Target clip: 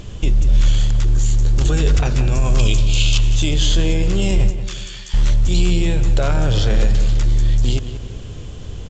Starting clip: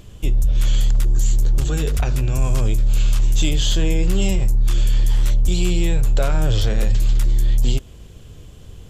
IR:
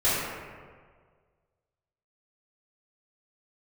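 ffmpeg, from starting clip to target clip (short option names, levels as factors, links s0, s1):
-filter_complex "[0:a]alimiter=limit=0.133:level=0:latency=1:release=12,asettb=1/sr,asplit=3[s0][s1][s2];[s0]atrim=end=2.594[s3];[s1]atrim=start=2.59:end=3.18,asetpts=PTS-STARTPTS,afade=t=in:d=0.004:c=qsin,afade=t=out:st=0.586:d=0.004:c=qsin,highshelf=f=2200:t=q:w=3:g=8[s4];[s2]atrim=start=3.176[s5];[s3][s4]acrossfade=d=0.004:c1=hsin:c2=qsin[s6];[s6][s5]acrossfade=d=0.004:c1=qsin:c2=hsin,asettb=1/sr,asplit=3[s7][s8][s9];[s7]atrim=end=4.504[s10];[s8]atrim=start=4.5:end=5.14,asetpts=PTS-STARTPTS,afade=t=in:d=0.004:c=qsin,afade=t=out:st=0.636:d=0.004:c=qsin,highpass=1500[s11];[s9]atrim=start=5.136[s12];[s10][s11]acrossfade=d=0.004:c1=hsin:c2=qsin[s13];[s13][s12]acrossfade=d=0.004:c1=qsin:c2=hsin,asplit=2[s14][s15];[s15]adelay=182,lowpass=f=3000:p=1,volume=0.299,asplit=2[s16][s17];[s17]adelay=182,lowpass=f=3000:p=1,volume=0.49,asplit=2[s18][s19];[s19]adelay=182,lowpass=f=3000:p=1,volume=0.49,asplit=2[s20][s21];[s21]adelay=182,lowpass=f=3000:p=1,volume=0.49,asplit=2[s22][s23];[s23]adelay=182,lowpass=f=3000:p=1,volume=0.49[s24];[s14][s16][s18][s20][s22][s24]amix=inputs=6:normalize=0,volume=2.66" -ar 16000 -c:a pcm_mulaw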